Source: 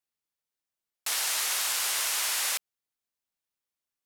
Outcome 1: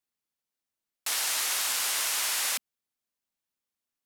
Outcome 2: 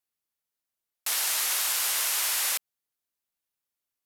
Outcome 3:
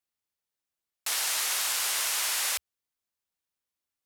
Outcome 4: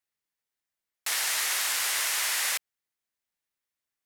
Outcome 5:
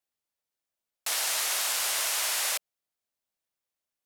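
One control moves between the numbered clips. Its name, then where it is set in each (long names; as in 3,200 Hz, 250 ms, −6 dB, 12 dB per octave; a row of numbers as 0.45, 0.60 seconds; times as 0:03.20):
parametric band, centre frequency: 240, 13,000, 72, 1,900, 620 Hertz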